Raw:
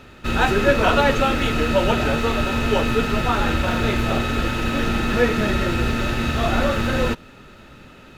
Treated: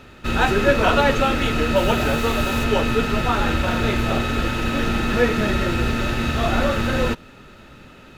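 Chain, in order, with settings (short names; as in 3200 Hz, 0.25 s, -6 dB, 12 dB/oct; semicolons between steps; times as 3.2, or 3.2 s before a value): 1.75–2.63 high shelf 12000 Hz -> 7600 Hz +11 dB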